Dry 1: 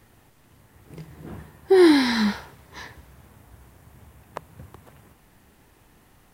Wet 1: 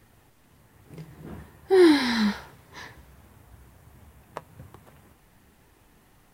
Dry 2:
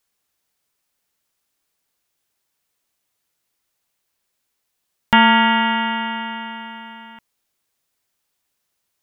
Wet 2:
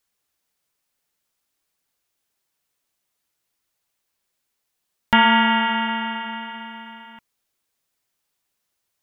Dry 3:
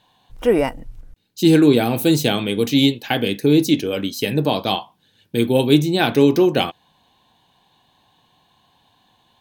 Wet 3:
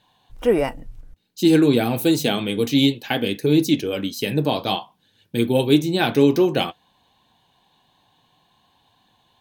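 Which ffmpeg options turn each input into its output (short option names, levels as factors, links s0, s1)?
-af "flanger=delay=0.4:depth=7.5:regen=-67:speed=0.55:shape=triangular,volume=1.26"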